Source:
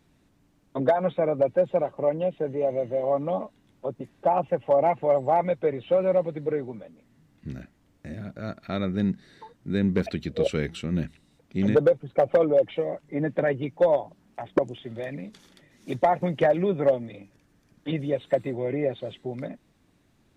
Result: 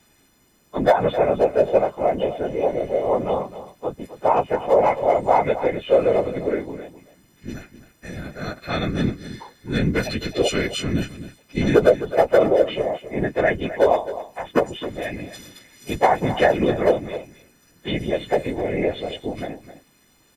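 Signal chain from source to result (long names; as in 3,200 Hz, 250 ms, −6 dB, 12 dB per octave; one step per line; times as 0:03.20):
every partial snapped to a pitch grid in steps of 3 semitones
random phases in short frames
single-tap delay 261 ms −13.5 dB
level +4 dB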